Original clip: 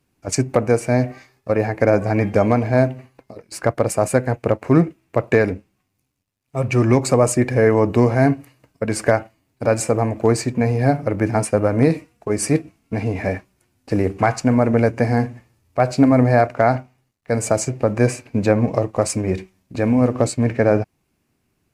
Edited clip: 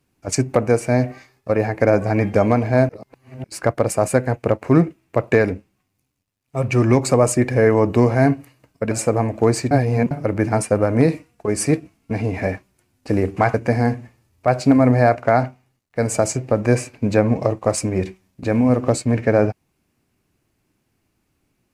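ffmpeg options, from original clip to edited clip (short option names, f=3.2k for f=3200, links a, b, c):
-filter_complex "[0:a]asplit=7[a][b][c][d][e][f][g];[a]atrim=end=2.892[h];[b]atrim=start=2.888:end=3.442,asetpts=PTS-STARTPTS,areverse[i];[c]atrim=start=3.438:end=8.912[j];[d]atrim=start=9.728:end=10.532[k];[e]atrim=start=10.528:end=10.932,asetpts=PTS-STARTPTS,areverse[l];[f]atrim=start=10.928:end=14.362[m];[g]atrim=start=14.858[n];[h][i]acrossfade=d=0.004:c1=hsin:c2=hsin[o];[o][j]acrossfade=d=0.004:c1=hsin:c2=hsin[p];[p][k]acrossfade=d=0.004:c1=hsin:c2=hsin[q];[q][l]acrossfade=d=0.004:c1=hsin:c2=hsin[r];[r][m]acrossfade=d=0.004:c1=hsin:c2=hsin[s];[s][n]acrossfade=d=0.004:c1=hsin:c2=hsin"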